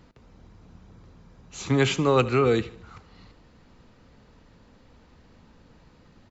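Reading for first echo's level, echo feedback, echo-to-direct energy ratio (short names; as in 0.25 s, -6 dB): -19.0 dB, 47%, -18.0 dB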